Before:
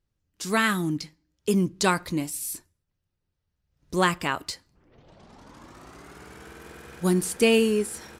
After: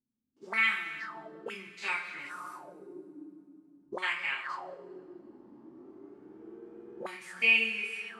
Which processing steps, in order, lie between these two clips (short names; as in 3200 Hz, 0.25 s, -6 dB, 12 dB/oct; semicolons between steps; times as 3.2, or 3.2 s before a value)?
stepped spectrum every 50 ms; two-slope reverb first 0.24 s, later 3.3 s, from -18 dB, DRR -7.5 dB; auto-wah 250–2300 Hz, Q 8.2, up, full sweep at -18 dBFS; gain +2.5 dB